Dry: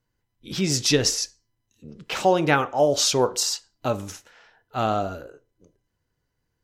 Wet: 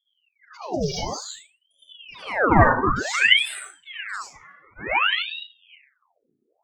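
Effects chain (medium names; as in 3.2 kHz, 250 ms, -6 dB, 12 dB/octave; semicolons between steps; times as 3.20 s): spectral contrast enhancement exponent 3.6; de-esser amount 100%; slow attack 271 ms; flange 0.38 Hz, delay 2.5 ms, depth 4.1 ms, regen +75%; flutter echo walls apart 6.3 m, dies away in 0.24 s; reverberation RT60 0.35 s, pre-delay 68 ms, DRR -8 dB; ring modulator with a swept carrier 1.8 kHz, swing 85%, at 0.55 Hz; trim +5 dB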